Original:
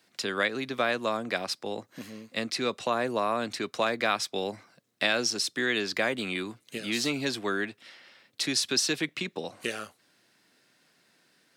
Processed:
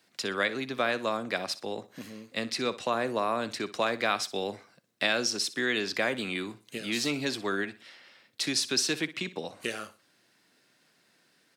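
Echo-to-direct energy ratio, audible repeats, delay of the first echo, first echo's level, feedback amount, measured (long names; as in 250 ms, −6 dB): −15.5 dB, 2, 61 ms, −16.0 dB, 31%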